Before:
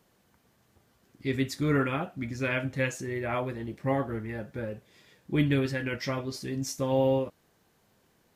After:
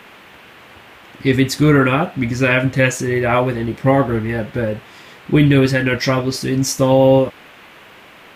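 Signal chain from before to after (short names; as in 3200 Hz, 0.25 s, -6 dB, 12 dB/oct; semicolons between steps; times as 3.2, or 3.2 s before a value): band noise 200–2900 Hz -58 dBFS; maximiser +16 dB; gain -1 dB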